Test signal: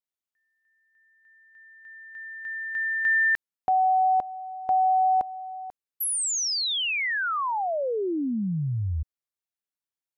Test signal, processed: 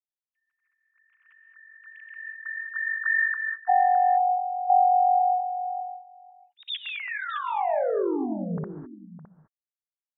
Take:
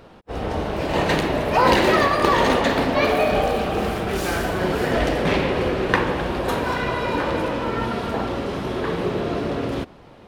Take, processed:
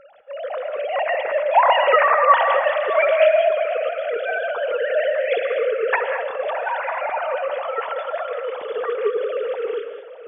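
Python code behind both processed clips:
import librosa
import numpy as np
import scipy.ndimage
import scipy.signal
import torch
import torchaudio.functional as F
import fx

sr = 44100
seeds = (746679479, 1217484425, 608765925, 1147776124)

y = fx.sine_speech(x, sr)
y = y + 10.0 ** (-14.5 / 20.0) * np.pad(y, (int(613 * sr / 1000.0), 0))[:len(y)]
y = fx.rev_gated(y, sr, seeds[0], gate_ms=230, shape='rising', drr_db=7.5)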